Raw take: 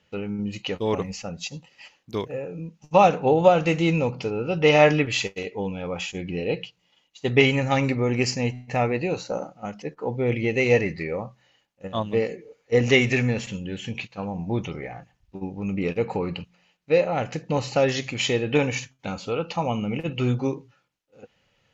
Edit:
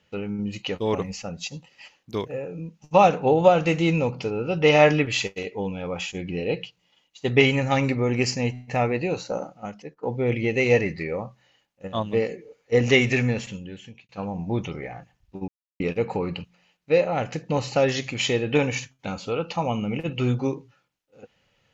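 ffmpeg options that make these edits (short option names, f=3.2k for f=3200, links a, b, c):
-filter_complex "[0:a]asplit=5[a][b][c][d][e];[a]atrim=end=10.03,asetpts=PTS-STARTPTS,afade=t=out:st=9.58:d=0.45:silence=0.16788[f];[b]atrim=start=10.03:end=14.09,asetpts=PTS-STARTPTS,afade=t=in:d=0.004:c=hsin:silence=0.16788,afade=t=out:st=3.28:d=0.78[g];[c]atrim=start=14.09:end=15.48,asetpts=PTS-STARTPTS,afade=t=in:d=0.004:c=hsin,afade=t=out:st=1.386:d=0.004:c=hsin[h];[d]atrim=start=15.48:end=15.8,asetpts=PTS-STARTPTS,volume=0[i];[e]atrim=start=15.8,asetpts=PTS-STARTPTS,afade=t=in:d=0.004:c=hsin[j];[f][g][h][i][j]concat=n=5:v=0:a=1"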